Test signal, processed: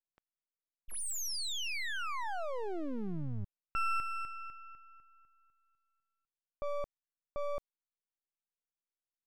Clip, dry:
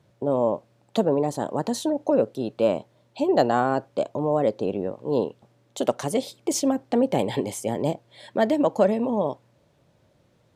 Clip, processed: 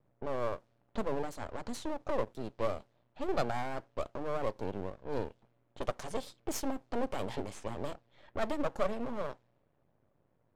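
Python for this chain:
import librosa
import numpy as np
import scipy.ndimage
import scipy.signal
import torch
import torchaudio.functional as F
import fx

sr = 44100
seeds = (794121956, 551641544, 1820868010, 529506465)

y = np.maximum(x, 0.0)
y = fx.env_lowpass(y, sr, base_hz=1600.0, full_db=-25.0)
y = F.gain(torch.from_numpy(y), -7.0).numpy()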